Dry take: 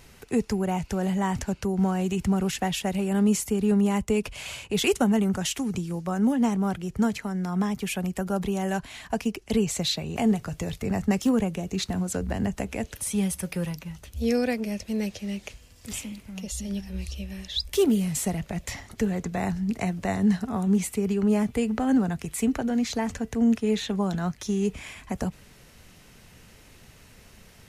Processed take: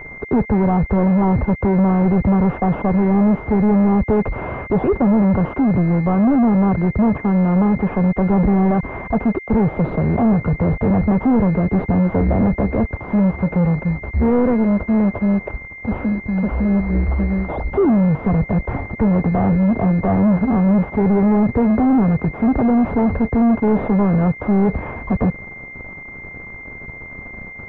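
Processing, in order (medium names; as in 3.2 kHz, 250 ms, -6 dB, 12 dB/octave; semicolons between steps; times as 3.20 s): 8.30–8.71 s: bass shelf 220 Hz +7.5 dB; waveshaping leveller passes 5; class-D stage that switches slowly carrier 2.1 kHz; trim +1 dB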